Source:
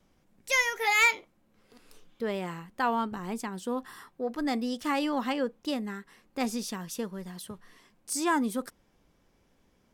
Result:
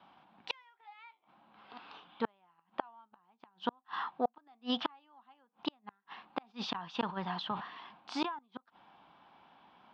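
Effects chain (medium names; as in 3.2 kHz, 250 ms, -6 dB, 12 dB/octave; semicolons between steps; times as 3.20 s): Chebyshev shaper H 2 -30 dB, 4 -36 dB, 5 -40 dB, 6 -36 dB, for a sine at -14.5 dBFS; steep low-pass 3.6 kHz 36 dB/octave; resonant low shelf 630 Hz -8.5 dB, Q 3; inverted gate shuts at -30 dBFS, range -42 dB; high-pass 190 Hz 12 dB/octave; peaking EQ 2 kHz -9 dB 0.55 oct; 6.39–8.39 s: decay stretcher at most 89 dB/s; trim +11.5 dB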